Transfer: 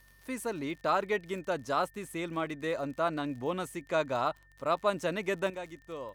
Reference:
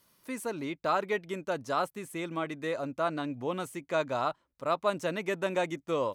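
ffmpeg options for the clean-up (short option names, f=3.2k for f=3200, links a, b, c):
-af "adeclick=t=4,bandreject=f=47.4:t=h:w=4,bandreject=f=94.8:t=h:w=4,bandreject=f=142.2:t=h:w=4,bandreject=f=1.8k:w=30,asetnsamples=n=441:p=0,asendcmd='5.5 volume volume 11dB',volume=0dB"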